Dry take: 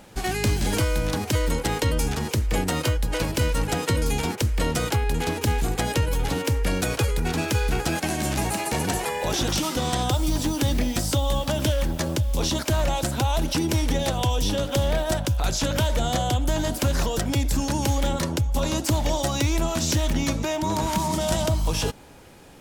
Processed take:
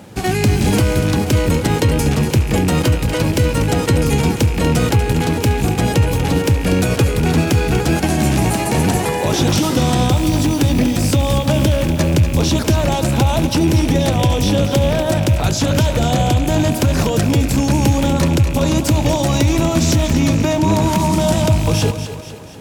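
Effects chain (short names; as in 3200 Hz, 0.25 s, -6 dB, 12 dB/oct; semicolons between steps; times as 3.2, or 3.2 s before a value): rattling part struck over -25 dBFS, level -24 dBFS; HPF 73 Hz 24 dB/oct; low shelf 420 Hz +9 dB; limiter -11 dBFS, peak gain reduction 6 dB; split-band echo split 330 Hz, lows 0.144 s, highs 0.241 s, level -10 dB; gain +5 dB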